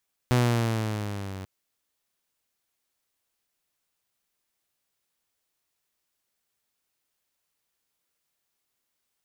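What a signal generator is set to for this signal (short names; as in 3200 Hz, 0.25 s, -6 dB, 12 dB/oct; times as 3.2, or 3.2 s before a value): gliding synth tone saw, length 1.14 s, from 125 Hz, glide -5 st, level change -17.5 dB, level -15.5 dB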